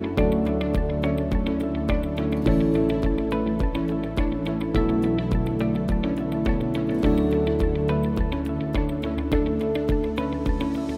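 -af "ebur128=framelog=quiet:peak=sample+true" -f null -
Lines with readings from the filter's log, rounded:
Integrated loudness:
  I:         -24.2 LUFS
  Threshold: -34.2 LUFS
Loudness range:
  LRA:         1.1 LU
  Threshold: -44.1 LUFS
  LRA low:   -24.6 LUFS
  LRA high:  -23.5 LUFS
Sample peak:
  Peak:       -7.3 dBFS
True peak:
  Peak:       -7.3 dBFS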